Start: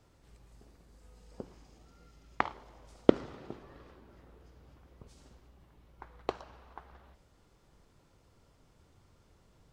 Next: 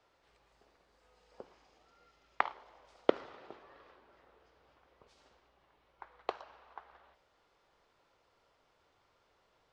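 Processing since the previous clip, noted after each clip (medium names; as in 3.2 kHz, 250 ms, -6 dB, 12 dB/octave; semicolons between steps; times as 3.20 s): three-band isolator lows -19 dB, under 440 Hz, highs -17 dB, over 5.1 kHz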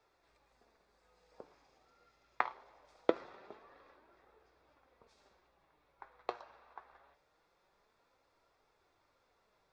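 band-stop 3 kHz, Q 6.6; flange 0.23 Hz, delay 2.2 ms, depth 6.7 ms, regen +66%; trim +2 dB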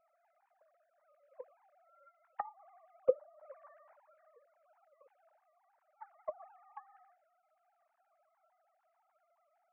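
formants replaced by sine waves; Gaussian low-pass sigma 4.6 samples; low-pass that closes with the level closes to 550 Hz, closed at -39.5 dBFS; trim +4 dB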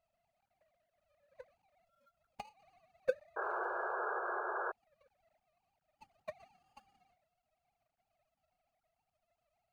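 median filter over 41 samples; peaking EQ 350 Hz -10 dB 0.91 oct; painted sound noise, 3.36–4.72 s, 350–1700 Hz -39 dBFS; trim +1 dB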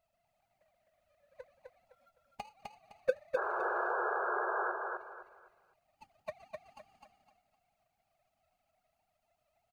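feedback delay 256 ms, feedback 29%, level -3.5 dB; trim +2.5 dB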